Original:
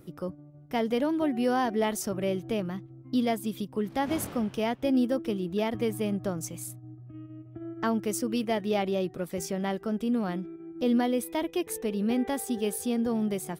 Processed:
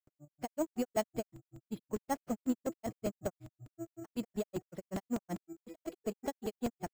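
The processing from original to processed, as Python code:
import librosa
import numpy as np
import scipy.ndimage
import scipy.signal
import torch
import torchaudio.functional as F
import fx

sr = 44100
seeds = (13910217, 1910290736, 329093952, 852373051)

p1 = fx.peak_eq(x, sr, hz=650.0, db=8.5, octaves=0.28)
p2 = fx.stretch_vocoder(p1, sr, factor=0.51)
p3 = np.clip(p2, -10.0 ** (-32.0 / 20.0), 10.0 ** (-32.0 / 20.0))
p4 = p2 + (p3 * 10.0 ** (-3.0 / 20.0))
p5 = fx.granulator(p4, sr, seeds[0], grain_ms=100.0, per_s=5.3, spray_ms=100.0, spread_st=0)
p6 = np.repeat(scipy.signal.resample_poly(p5, 1, 6), 6)[:len(p5)]
p7 = fx.buffer_crackle(p6, sr, first_s=0.66, period_s=0.1, block=128, kind='repeat')
y = p7 * 10.0 ** (-6.0 / 20.0)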